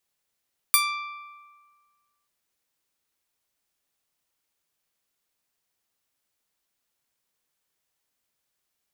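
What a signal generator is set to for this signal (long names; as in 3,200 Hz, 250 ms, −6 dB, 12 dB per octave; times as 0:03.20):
Karplus-Strong string D6, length 1.53 s, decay 1.61 s, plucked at 0.3, bright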